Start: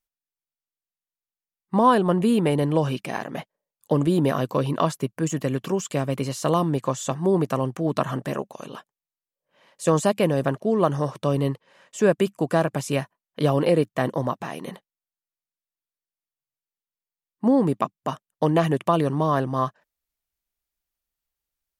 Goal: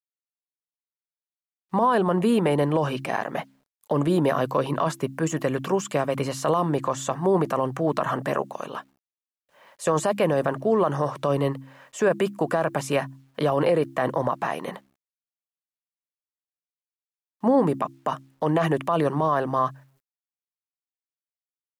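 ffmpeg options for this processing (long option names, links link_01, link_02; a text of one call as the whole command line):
ffmpeg -i in.wav -filter_complex "[0:a]bandreject=frequency=67.11:width_type=h:width=4,bandreject=frequency=134.22:width_type=h:width=4,bandreject=frequency=201.33:width_type=h:width=4,bandreject=frequency=268.44:width_type=h:width=4,bandreject=frequency=335.55:width_type=h:width=4,acrossover=split=530|2000[link_01][link_02][link_03];[link_02]dynaudnorm=framelen=270:gausssize=11:maxgain=11.5dB[link_04];[link_01][link_04][link_03]amix=inputs=3:normalize=0,alimiter=limit=-11dB:level=0:latency=1:release=28,acrusher=bits=10:mix=0:aa=0.000001,volume=-1.5dB" out.wav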